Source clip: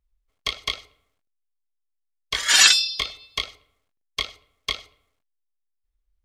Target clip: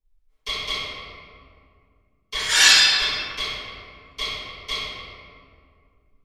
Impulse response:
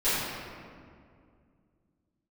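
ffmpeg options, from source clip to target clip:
-filter_complex "[1:a]atrim=start_sample=2205[link_01];[0:a][link_01]afir=irnorm=-1:irlink=0,volume=-10.5dB"

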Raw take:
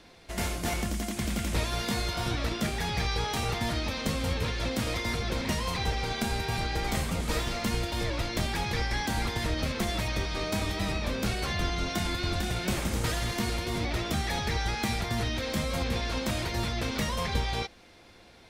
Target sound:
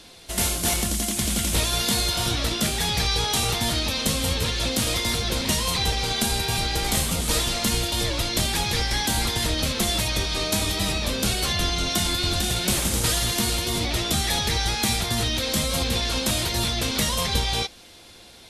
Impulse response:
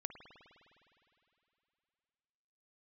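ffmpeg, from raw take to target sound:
-af "aexciter=amount=2:drive=7:freq=3000,volume=4dB" -ar 32000 -c:a libvorbis -b:a 48k

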